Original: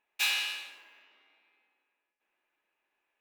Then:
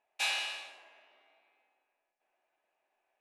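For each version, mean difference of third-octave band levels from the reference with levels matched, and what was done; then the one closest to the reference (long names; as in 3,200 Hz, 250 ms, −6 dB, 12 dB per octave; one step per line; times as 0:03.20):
2.5 dB: Butterworth low-pass 11,000 Hz
parametric band 670 Hz +15 dB 0.7 octaves
tuned comb filter 380 Hz, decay 0.58 s, mix 70%
level +6 dB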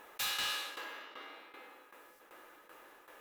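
11.0 dB: thirty-one-band graphic EQ 315 Hz +5 dB, 500 Hz +10 dB, 1,250 Hz +8 dB, 2,500 Hz −11 dB, 12,500 Hz +6 dB
shaped tremolo saw down 2.6 Hz, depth 85%
hard clipping −37.5 dBFS, distortion −8 dB
envelope flattener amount 50%
level +5 dB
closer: first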